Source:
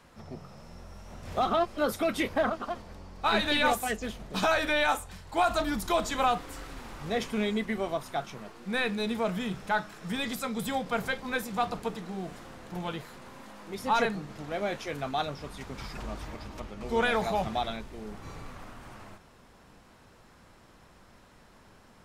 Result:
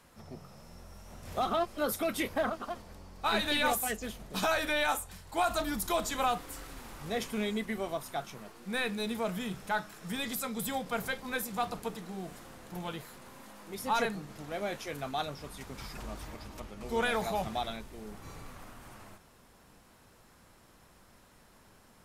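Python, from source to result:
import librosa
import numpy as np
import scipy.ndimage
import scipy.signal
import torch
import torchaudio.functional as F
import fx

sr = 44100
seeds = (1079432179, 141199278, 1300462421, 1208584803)

y = fx.peak_eq(x, sr, hz=13000.0, db=11.0, octaves=1.2)
y = F.gain(torch.from_numpy(y), -4.0).numpy()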